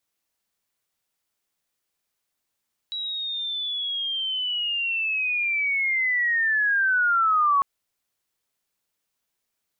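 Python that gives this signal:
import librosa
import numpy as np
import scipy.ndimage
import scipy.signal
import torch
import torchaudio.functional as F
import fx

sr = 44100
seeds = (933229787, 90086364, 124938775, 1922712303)

y = fx.chirp(sr, length_s=4.7, from_hz=3900.0, to_hz=1100.0, law='linear', from_db=-27.5, to_db=-16.5)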